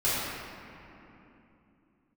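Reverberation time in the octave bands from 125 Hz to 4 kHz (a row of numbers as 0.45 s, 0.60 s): 3.9 s, 4.4 s, 3.1 s, 2.8 s, 2.6 s, 1.7 s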